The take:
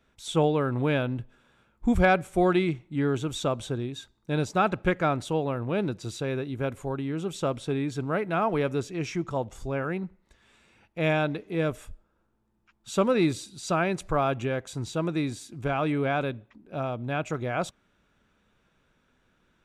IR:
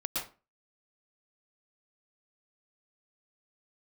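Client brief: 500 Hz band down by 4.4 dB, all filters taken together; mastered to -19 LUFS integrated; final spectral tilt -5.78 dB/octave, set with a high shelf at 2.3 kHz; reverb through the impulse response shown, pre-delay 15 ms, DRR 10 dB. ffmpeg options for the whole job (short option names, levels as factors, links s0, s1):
-filter_complex "[0:a]equalizer=f=500:t=o:g=-5.5,highshelf=f=2300:g=-3,asplit=2[s0][s1];[1:a]atrim=start_sample=2205,adelay=15[s2];[s1][s2]afir=irnorm=-1:irlink=0,volume=0.188[s3];[s0][s3]amix=inputs=2:normalize=0,volume=3.55"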